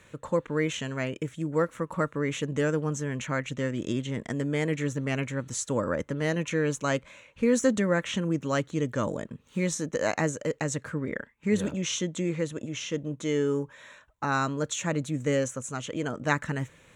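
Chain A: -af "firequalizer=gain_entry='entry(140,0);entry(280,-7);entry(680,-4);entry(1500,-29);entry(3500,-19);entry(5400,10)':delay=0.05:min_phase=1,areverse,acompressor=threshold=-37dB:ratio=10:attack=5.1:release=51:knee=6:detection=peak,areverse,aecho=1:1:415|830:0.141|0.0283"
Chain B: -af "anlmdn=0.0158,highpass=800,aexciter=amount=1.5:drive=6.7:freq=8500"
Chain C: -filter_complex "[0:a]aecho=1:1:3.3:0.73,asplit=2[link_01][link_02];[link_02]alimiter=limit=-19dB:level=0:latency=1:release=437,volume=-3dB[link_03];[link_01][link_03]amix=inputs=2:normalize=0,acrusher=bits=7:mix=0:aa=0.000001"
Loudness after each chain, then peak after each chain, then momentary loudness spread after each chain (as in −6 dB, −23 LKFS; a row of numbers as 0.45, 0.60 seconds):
−40.0, −35.0, −24.5 LKFS; −24.0, −9.0, −6.5 dBFS; 5, 9, 5 LU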